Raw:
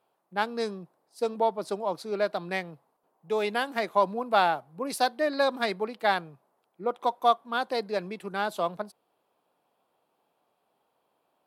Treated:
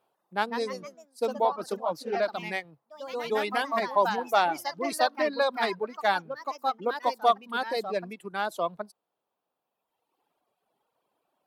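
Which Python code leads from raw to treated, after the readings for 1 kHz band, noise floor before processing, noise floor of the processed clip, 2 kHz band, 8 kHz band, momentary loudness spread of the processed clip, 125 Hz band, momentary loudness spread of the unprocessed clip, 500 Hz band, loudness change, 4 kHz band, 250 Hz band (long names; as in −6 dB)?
+0.5 dB, −75 dBFS, −84 dBFS, +0.5 dB, +1.0 dB, 11 LU, −3.0 dB, 9 LU, 0.0 dB, 0.0 dB, 0.0 dB, −1.5 dB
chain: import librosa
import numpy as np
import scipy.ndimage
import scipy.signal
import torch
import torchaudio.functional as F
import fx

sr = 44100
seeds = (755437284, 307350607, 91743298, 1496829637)

y = fx.echo_pitch(x, sr, ms=189, semitones=2, count=3, db_per_echo=-6.0)
y = fx.dereverb_blind(y, sr, rt60_s=1.8)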